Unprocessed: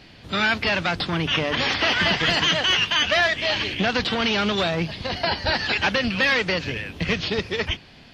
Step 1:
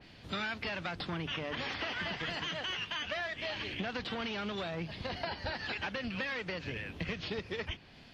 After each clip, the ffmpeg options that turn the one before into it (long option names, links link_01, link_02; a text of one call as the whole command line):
ffmpeg -i in.wav -af "acompressor=threshold=-26dB:ratio=6,adynamicequalizer=threshold=0.00631:dfrequency=3200:dqfactor=0.7:tfrequency=3200:tqfactor=0.7:attack=5:release=100:ratio=0.375:range=2.5:mode=cutabove:tftype=highshelf,volume=-7.5dB" out.wav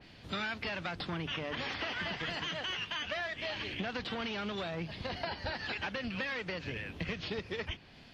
ffmpeg -i in.wav -af anull out.wav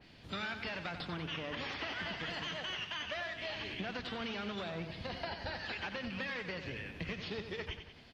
ffmpeg -i in.wav -af "aecho=1:1:92|184|276|368|460|552:0.355|0.188|0.0997|0.0528|0.028|0.0148,volume=-3.5dB" out.wav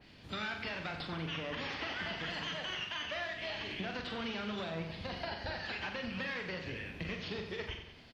ffmpeg -i in.wav -filter_complex "[0:a]asplit=2[link_01][link_02];[link_02]adelay=43,volume=-6.5dB[link_03];[link_01][link_03]amix=inputs=2:normalize=0" out.wav